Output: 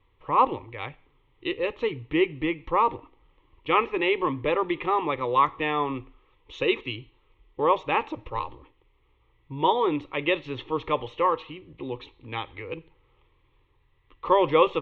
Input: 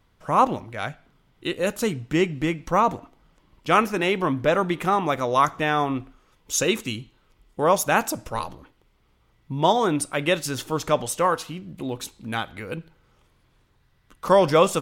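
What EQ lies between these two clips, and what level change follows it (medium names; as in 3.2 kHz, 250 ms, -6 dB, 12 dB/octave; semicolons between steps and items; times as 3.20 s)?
steep low-pass 4.5 kHz 48 dB/octave; static phaser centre 1 kHz, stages 8; 0.0 dB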